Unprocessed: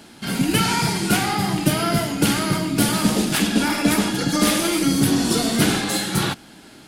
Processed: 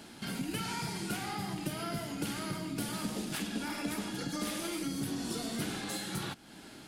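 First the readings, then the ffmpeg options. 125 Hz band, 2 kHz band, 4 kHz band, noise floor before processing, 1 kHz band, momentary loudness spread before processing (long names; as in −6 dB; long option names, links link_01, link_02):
−17.0 dB, −16.5 dB, −16.5 dB, −45 dBFS, −16.5 dB, 3 LU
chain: -af "acompressor=threshold=-34dB:ratio=2.5,volume=-5.5dB"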